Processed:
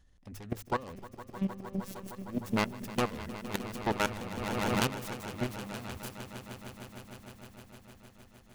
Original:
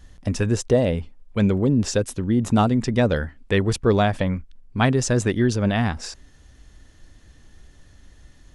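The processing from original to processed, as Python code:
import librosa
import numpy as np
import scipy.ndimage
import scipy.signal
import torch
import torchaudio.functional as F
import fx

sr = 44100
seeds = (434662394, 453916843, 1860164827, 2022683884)

y = fx.self_delay(x, sr, depth_ms=0.9)
y = fx.hum_notches(y, sr, base_hz=50, count=3)
y = fx.level_steps(y, sr, step_db=18)
y = fx.robotise(y, sr, hz=193.0, at=(0.95, 2.29))
y = fx.echo_swell(y, sr, ms=154, loudest=5, wet_db=-15.5)
y = fx.pre_swell(y, sr, db_per_s=21.0, at=(4.37, 5.1))
y = y * 10.0 ** (-9.0 / 20.0)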